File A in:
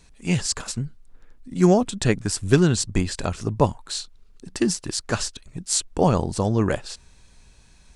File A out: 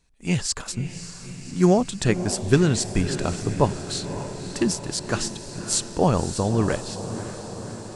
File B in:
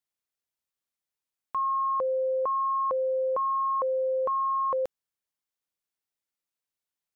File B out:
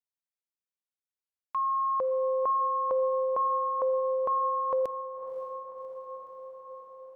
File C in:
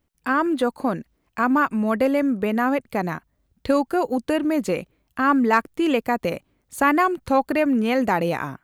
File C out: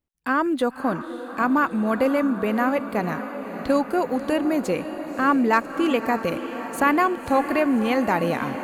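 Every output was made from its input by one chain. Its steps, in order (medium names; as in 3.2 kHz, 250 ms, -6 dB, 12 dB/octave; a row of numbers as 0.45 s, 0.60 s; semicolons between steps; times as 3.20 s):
gate -47 dBFS, range -12 dB; on a send: echo that smears into a reverb 571 ms, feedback 68%, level -11 dB; on the sum: trim -1 dB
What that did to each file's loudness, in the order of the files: -1.0 LU, -1.0 LU, -1.0 LU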